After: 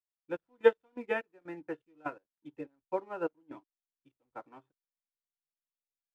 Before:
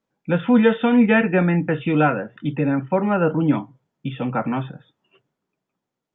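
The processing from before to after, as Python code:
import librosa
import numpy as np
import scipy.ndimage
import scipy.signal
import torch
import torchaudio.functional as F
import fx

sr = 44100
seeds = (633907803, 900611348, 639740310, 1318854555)

y = fx.dynamic_eq(x, sr, hz=1000.0, q=3.7, threshold_db=-41.0, ratio=4.0, max_db=5)
y = fx.step_gate(y, sr, bpm=124, pattern='xxx..x..xx..', floor_db=-12.0, edge_ms=4.5)
y = fx.low_shelf_res(y, sr, hz=260.0, db=-7.5, q=3.0)
y = fx.backlash(y, sr, play_db=-39.0)
y = fx.upward_expand(y, sr, threshold_db=-30.0, expansion=2.5)
y = F.gain(torch.from_numpy(y), -7.0).numpy()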